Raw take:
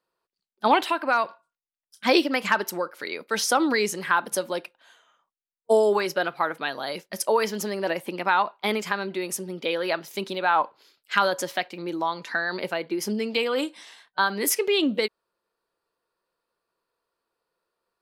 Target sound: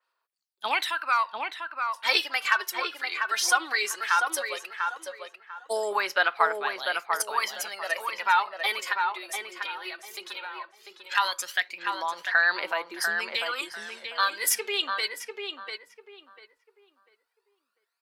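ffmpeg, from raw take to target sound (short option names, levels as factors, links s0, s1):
-filter_complex "[0:a]highpass=1200,asettb=1/sr,asplit=3[s0][s1][s2];[s0]atrim=end=8.934[s3];[s1]atrim=start=8.93:end=11.15,asetpts=PTS-STARTPTS,afade=t=in:d=0.004:c=qsin,afade=t=out:st=2.216:d=0.004:c=qsin,acompressor=threshold=0.0141:ratio=10[s4];[s2]atrim=start=11.146[s5];[s3][s4]acrossfade=d=0.004:c1=hsin:c2=qsin[s6];[s6][s5]acrossfade=d=0.004:c1=qsin:c2=hsin,aphaser=in_gain=1:out_gain=1:delay=2.9:decay=0.63:speed=0.16:type=sinusoidal,asplit=2[s7][s8];[s8]adelay=695,lowpass=f=2000:p=1,volume=0.631,asplit=2[s9][s10];[s10]adelay=695,lowpass=f=2000:p=1,volume=0.28,asplit=2[s11][s12];[s12]adelay=695,lowpass=f=2000:p=1,volume=0.28,asplit=2[s13][s14];[s14]adelay=695,lowpass=f=2000:p=1,volume=0.28[s15];[s7][s9][s11][s13][s15]amix=inputs=5:normalize=0,adynamicequalizer=threshold=0.0126:dfrequency=3900:dqfactor=0.7:tfrequency=3900:tqfactor=0.7:attack=5:release=100:ratio=0.375:range=1.5:mode=cutabove:tftype=highshelf"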